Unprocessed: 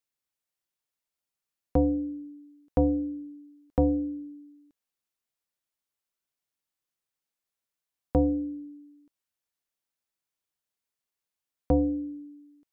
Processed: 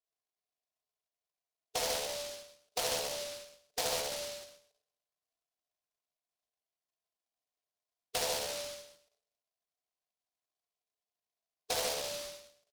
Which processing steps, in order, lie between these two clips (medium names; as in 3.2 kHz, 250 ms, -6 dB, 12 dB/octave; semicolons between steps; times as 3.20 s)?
comb 2.9 ms, depth 81%; early reflections 36 ms -6.5 dB, 69 ms -9.5 dB; reverberation RT60 0.80 s, pre-delay 3 ms, DRR -0.5 dB; valve stage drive 27 dB, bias 0.75; brick-wall FIR band-pass 430–1100 Hz; delay time shaken by noise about 4.3 kHz, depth 0.23 ms; trim +3.5 dB